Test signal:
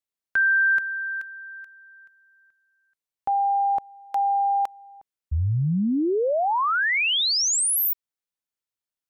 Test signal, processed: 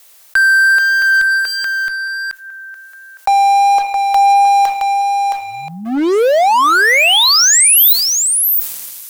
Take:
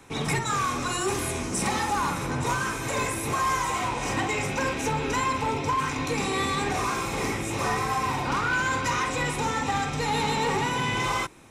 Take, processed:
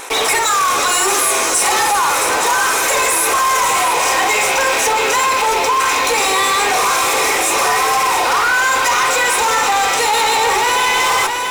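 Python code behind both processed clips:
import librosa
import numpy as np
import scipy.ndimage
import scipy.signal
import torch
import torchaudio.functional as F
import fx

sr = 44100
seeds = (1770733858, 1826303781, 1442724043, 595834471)

p1 = scipy.signal.sosfilt(scipy.signal.butter(4, 450.0, 'highpass', fs=sr, output='sos'), x)
p2 = fx.high_shelf(p1, sr, hz=8200.0, db=8.0)
p3 = fx.rev_double_slope(p2, sr, seeds[0], early_s=0.27, late_s=3.1, knee_db=-21, drr_db=18.0)
p4 = fx.fuzz(p3, sr, gain_db=41.0, gate_db=-44.0)
p5 = p3 + (p4 * 10.0 ** (-12.0 / 20.0))
p6 = fx.vibrato(p5, sr, rate_hz=1.4, depth_cents=6.8)
p7 = p6 + 10.0 ** (-9.5 / 20.0) * np.pad(p6, (int(668 * sr / 1000.0), 0))[:len(p6)]
p8 = fx.env_flatten(p7, sr, amount_pct=50)
y = p8 * 10.0 ** (5.0 / 20.0)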